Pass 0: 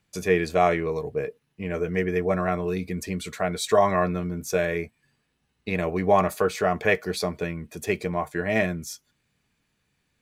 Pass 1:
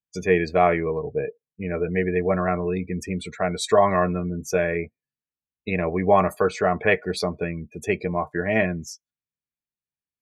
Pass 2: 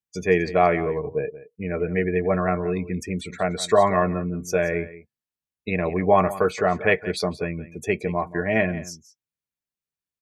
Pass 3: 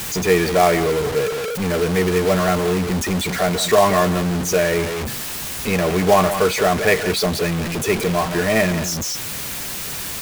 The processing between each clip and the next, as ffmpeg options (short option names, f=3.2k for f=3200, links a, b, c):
-af "afftdn=nr=31:nf=-38,volume=2dB"
-af "aecho=1:1:176:0.158"
-af "aeval=exprs='val(0)+0.5*0.1*sgn(val(0))':c=same,acrusher=bits=3:mode=log:mix=0:aa=0.000001,volume=1dB"